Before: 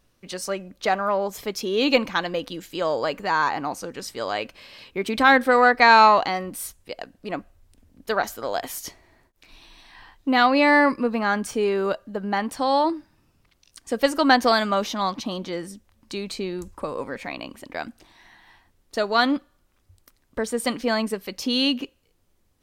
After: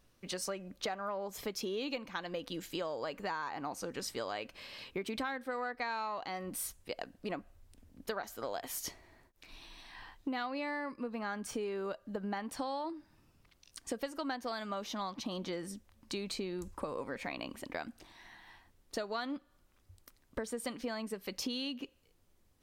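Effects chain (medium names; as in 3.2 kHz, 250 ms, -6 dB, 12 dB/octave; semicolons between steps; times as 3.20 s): compression 12:1, threshold -31 dBFS, peak gain reduction 21.5 dB; trim -3.5 dB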